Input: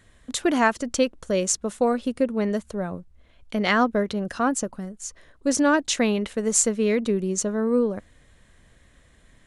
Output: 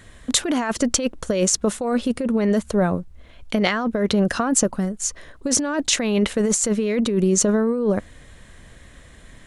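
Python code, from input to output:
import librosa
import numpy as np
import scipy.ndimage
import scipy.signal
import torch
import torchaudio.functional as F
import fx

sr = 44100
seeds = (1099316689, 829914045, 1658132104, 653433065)

y = fx.over_compress(x, sr, threshold_db=-26.0, ratio=-1.0)
y = F.gain(torch.from_numpy(y), 6.5).numpy()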